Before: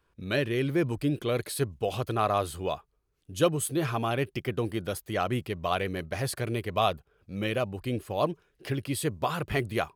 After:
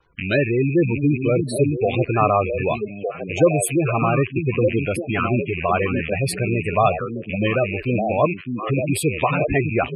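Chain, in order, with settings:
loose part that buzzes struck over −45 dBFS, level −23 dBFS
log-companded quantiser 6 bits
healed spectral selection 0:05.15–0:05.53, 450–960 Hz
echo through a band-pass that steps 605 ms, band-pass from 200 Hz, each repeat 1.4 octaves, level −1.5 dB
gate on every frequency bin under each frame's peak −15 dB strong
level +9 dB

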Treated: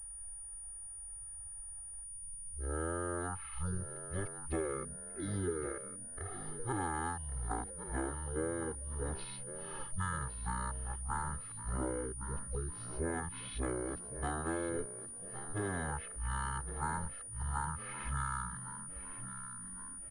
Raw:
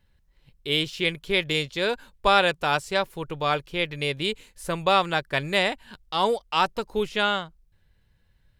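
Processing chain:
played backwards from end to start
low-shelf EQ 440 Hz +4.5 dB
comb filter 1 ms, depth 88%
downward compressor 12 to 1, threshold −33 dBFS, peak gain reduction 22 dB
on a send: echo with shifted repeats 475 ms, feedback 46%, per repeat +130 Hz, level −12.5 dB
on the sum: wrong playback speed 78 rpm record played at 33 rpm
switching amplifier with a slow clock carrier 9,500 Hz
level −2 dB

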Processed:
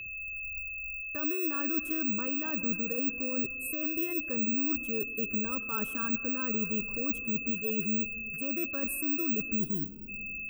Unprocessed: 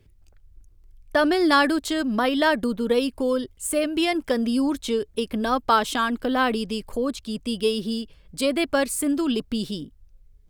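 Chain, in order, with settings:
loose part that buzzes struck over −41 dBFS, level −27 dBFS
flat-topped bell 3,700 Hz −12 dB 2.3 octaves
reversed playback
downward compressor, threshold −30 dBFS, peak gain reduction 14.5 dB
reversed playback
phaser with its sweep stopped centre 1,800 Hz, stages 4
bad sample-rate conversion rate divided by 2×, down filtered, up zero stuff
dynamic equaliser 1,800 Hz, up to −5 dB, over −53 dBFS, Q 1.5
steady tone 2,600 Hz −38 dBFS
time-frequency box erased 0:09.60–0:10.08, 510–3,000 Hz
on a send: convolution reverb RT60 3.1 s, pre-delay 45 ms, DRR 15 dB

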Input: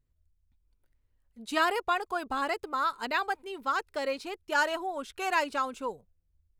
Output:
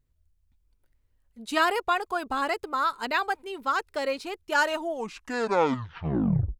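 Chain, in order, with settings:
turntable brake at the end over 1.94 s
level +3 dB

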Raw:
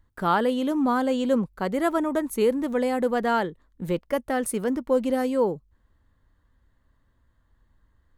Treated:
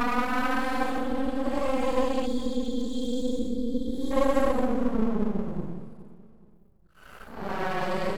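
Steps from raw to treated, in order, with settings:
extreme stretch with random phases 11×, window 0.05 s, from 0:00.93
half-wave rectification
gain on a spectral selection 0:02.26–0:04.11, 530–3,200 Hz −22 dB
on a send: repeating echo 421 ms, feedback 35%, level −16 dB

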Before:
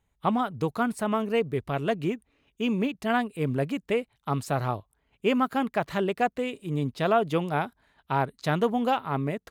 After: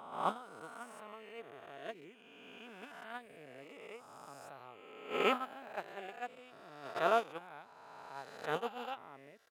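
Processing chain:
peak hold with a rise ahead of every peak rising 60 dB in 2.59 s
noise gate −18 dBFS, range −19 dB
high-pass filter 540 Hz 6 dB per octave
level −6 dB

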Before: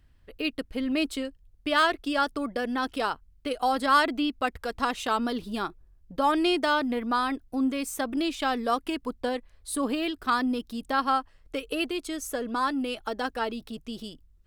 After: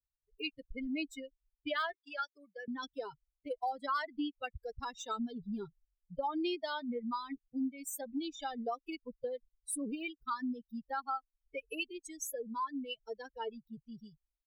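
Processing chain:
spectral dynamics exaggerated over time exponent 3
downward compressor 3 to 1, threshold −39 dBFS, peak gain reduction 14.5 dB
0:01.93–0:02.68: high-pass filter 780 Hz 12 dB per octave
level +3 dB

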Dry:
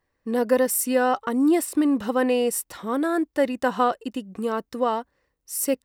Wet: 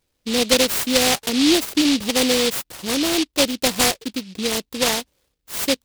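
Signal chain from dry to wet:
short delay modulated by noise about 3,500 Hz, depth 0.25 ms
level +3 dB

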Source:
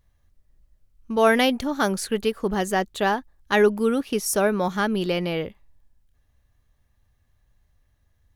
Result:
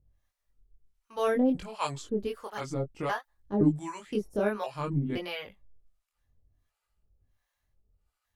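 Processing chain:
pitch shifter gated in a rhythm −5.5 semitones, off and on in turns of 515 ms
two-band tremolo in antiphase 1.4 Hz, depth 100%, crossover 630 Hz
multi-voice chorus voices 2, 0.57 Hz, delay 22 ms, depth 2.2 ms

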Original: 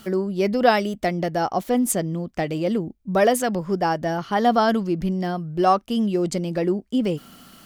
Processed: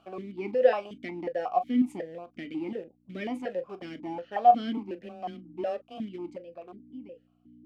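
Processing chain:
fade-out on the ending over 2.52 s
in parallel at −7 dB: centre clipping without the shift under −22 dBFS
0:04.77–0:05.98: on the sum: frequency shifter +14 Hz
mains hum 60 Hz, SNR 15 dB
on a send at −10 dB: convolution reverb, pre-delay 3 ms
on the sum: formant filter that steps through the vowels 5.5 Hz
level −2.5 dB

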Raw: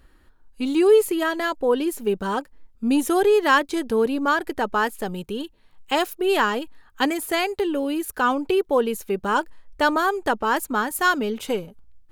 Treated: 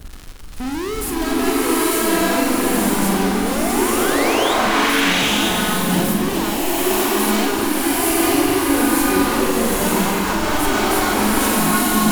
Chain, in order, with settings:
octave-band graphic EQ 500/1,000/2,000/4,000 Hz −11/−5/−11/−5 dB
surface crackle 160 per second −41 dBFS
in parallel at −9 dB: fuzz pedal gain 47 dB, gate −56 dBFS
on the sum: sound drawn into the spectrogram rise, 0:03.28–0:04.54, 320–3,900 Hz −18 dBFS
soft clipping −25 dBFS, distortion −9 dB
on a send: flutter between parallel walls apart 7.3 metres, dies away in 0.36 s
on the sum: slow-attack reverb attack 950 ms, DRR −8.5 dB

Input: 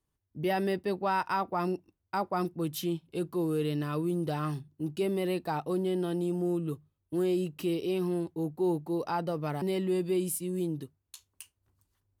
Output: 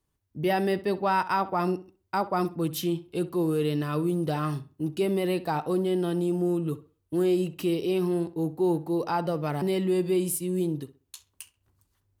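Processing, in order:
tape delay 65 ms, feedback 30%, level −14.5 dB, low-pass 3,100 Hz
level +4 dB

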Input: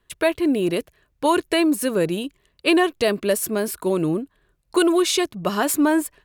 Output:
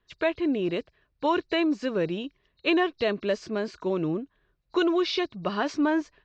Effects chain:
hearing-aid frequency compression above 3,700 Hz 1.5 to 1
Chebyshev low-pass filter 4,900 Hz, order 4
level −5 dB

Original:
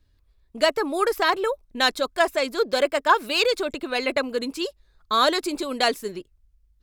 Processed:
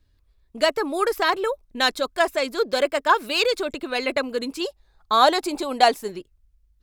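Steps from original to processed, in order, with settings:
0:04.60–0:06.10: parametric band 800 Hz +12 dB 0.45 octaves

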